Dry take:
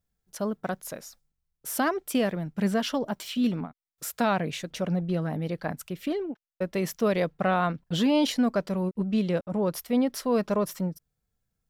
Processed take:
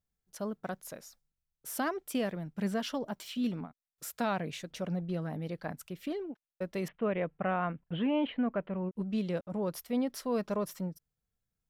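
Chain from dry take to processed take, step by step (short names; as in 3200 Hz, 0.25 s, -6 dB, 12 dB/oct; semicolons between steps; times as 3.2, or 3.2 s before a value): 6.88–8.96 steep low-pass 3000 Hz 48 dB/oct; gain -7 dB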